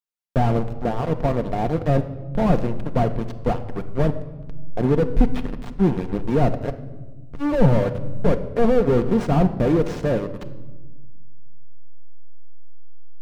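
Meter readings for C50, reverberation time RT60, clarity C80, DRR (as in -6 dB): 13.0 dB, 1.3 s, 15.0 dB, 6.5 dB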